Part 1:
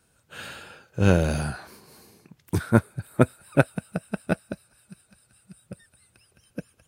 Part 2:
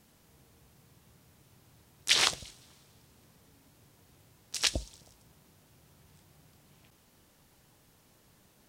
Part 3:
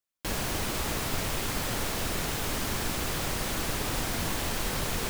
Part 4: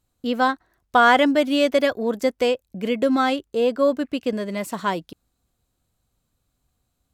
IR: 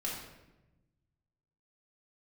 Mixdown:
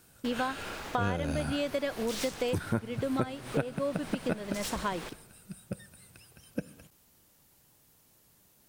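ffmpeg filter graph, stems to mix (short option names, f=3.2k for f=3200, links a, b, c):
-filter_complex "[0:a]volume=2.5dB,asplit=2[a][b];[b]volume=-20.5dB[c];[1:a]highshelf=f=7.9k:g=12,aeval=exprs='(tanh(31.6*val(0)+0.4)-tanh(0.4))/31.6':c=same,volume=-3dB[d];[2:a]highshelf=f=11k:g=-11.5,alimiter=limit=-23.5dB:level=0:latency=1:release=79,bass=f=250:g=-8,treble=f=4k:g=-5,volume=-7dB,asplit=2[e][f];[f]volume=-10.5dB[g];[3:a]volume=-5dB[h];[4:a]atrim=start_sample=2205[i];[c][g]amix=inputs=2:normalize=0[j];[j][i]afir=irnorm=-1:irlink=0[k];[a][d][e][h][k]amix=inputs=5:normalize=0,acompressor=threshold=-28dB:ratio=6"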